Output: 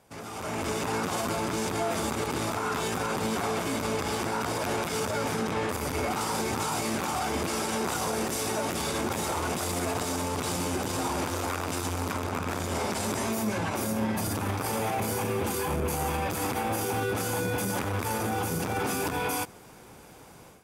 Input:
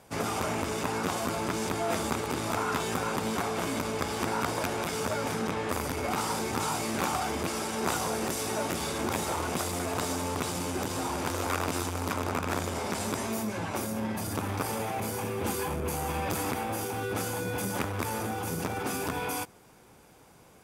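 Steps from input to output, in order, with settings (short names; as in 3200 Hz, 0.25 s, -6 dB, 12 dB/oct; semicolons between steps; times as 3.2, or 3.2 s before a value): limiter -27 dBFS, peak gain reduction 10.5 dB; AGC gain up to 12 dB; gain -5.5 dB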